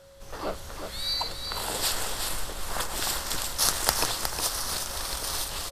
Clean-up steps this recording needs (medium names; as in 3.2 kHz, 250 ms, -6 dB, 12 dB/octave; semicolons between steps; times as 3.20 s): de-click; band-stop 550 Hz, Q 30; inverse comb 363 ms -7 dB